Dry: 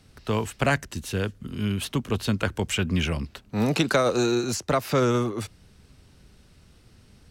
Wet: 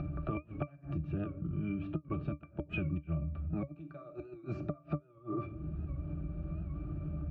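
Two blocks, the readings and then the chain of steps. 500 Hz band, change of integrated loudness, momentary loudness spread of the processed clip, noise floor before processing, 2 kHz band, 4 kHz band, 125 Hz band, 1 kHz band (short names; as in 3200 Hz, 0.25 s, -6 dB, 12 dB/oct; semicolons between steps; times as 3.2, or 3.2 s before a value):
-18.5 dB, -13.5 dB, 6 LU, -56 dBFS, -19.5 dB, -30.5 dB, -8.0 dB, -18.0 dB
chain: shoebox room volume 520 m³, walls furnished, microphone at 0.79 m; low-pass opened by the level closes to 1400 Hz, open at -7.5 dBFS; upward compressor, threshold -30 dBFS; flipped gate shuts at -14 dBFS, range -32 dB; octave resonator D, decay 0.11 s; compressor 4:1, threshold -50 dBFS, peak gain reduction 19 dB; record warp 78 rpm, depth 100 cents; gain +14.5 dB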